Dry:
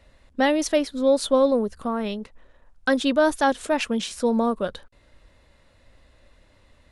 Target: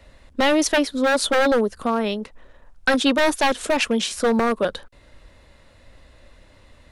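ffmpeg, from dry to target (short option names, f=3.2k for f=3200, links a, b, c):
-filter_complex "[0:a]acrossover=split=210|1500[a][b][c];[a]acompressor=threshold=-44dB:ratio=6[d];[b]aeval=exprs='0.112*(abs(mod(val(0)/0.112+3,4)-2)-1)':c=same[e];[d][e][c]amix=inputs=3:normalize=0,volume=6dB"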